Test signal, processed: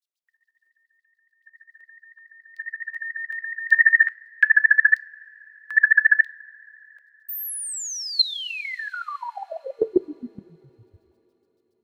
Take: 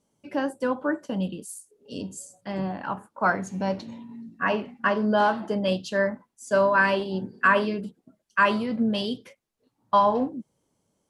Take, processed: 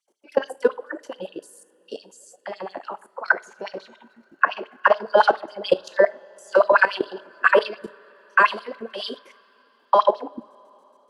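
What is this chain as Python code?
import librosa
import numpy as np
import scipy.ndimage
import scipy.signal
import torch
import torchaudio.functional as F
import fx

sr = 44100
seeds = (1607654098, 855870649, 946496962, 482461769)

y = fx.filter_lfo_highpass(x, sr, shape='sine', hz=7.1, low_hz=360.0, high_hz=4600.0, q=4.0)
y = fx.level_steps(y, sr, step_db=18)
y = fx.rev_double_slope(y, sr, seeds[0], early_s=0.31, late_s=4.2, knee_db=-19, drr_db=17.0)
y = y * 10.0 ** (5.0 / 20.0)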